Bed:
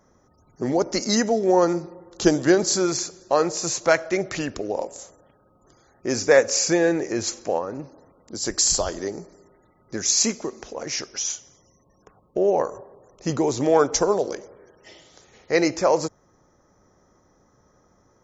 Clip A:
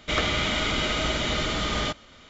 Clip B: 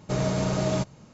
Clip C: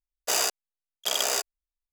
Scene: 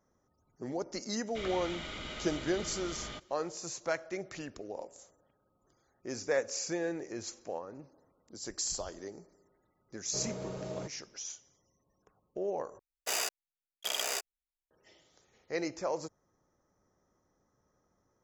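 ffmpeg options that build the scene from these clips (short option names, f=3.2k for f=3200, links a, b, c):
-filter_complex "[0:a]volume=-15dB[a];[2:a]equalizer=f=460:t=o:w=0.77:g=10[b];[3:a]equalizer=f=2.2k:t=o:w=0.66:g=5.5[c];[a]asplit=2[d][e];[d]atrim=end=12.794[f];[c]atrim=end=1.92,asetpts=PTS-STARTPTS,volume=-8.5dB[g];[e]atrim=start=14.706[h];[1:a]atrim=end=2.29,asetpts=PTS-STARTPTS,volume=-16.5dB,afade=t=in:d=0.004:c=hsin,afade=t=out:st=2.286:d=0.004:c=hsin,adelay=1270[i];[b]atrim=end=1.13,asetpts=PTS-STARTPTS,volume=-17.5dB,afade=t=in:d=0.004:c=hsin,afade=t=out:st=1.126:d=0.004:c=hsin,adelay=10040[j];[f][g]acrossfade=d=0.004:c1=hsin:c2=hsin[k];[k][h]acrossfade=d=0.004:c1=hsin:c2=hsin[l];[l][i][j]amix=inputs=3:normalize=0"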